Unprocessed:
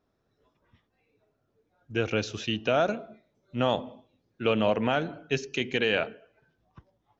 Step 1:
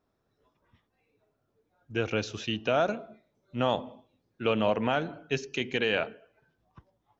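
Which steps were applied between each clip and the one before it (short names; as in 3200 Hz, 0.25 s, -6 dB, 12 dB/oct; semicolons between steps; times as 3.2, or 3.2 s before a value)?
bell 980 Hz +2.5 dB; gain -2 dB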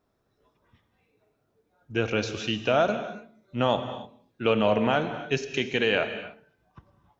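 non-linear reverb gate 0.32 s flat, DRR 9 dB; gain +3 dB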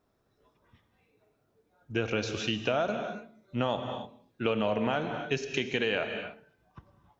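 compressor 3:1, threshold -26 dBFS, peak gain reduction 7 dB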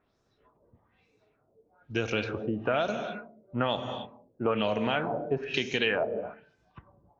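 LFO low-pass sine 1.1 Hz 520–6500 Hz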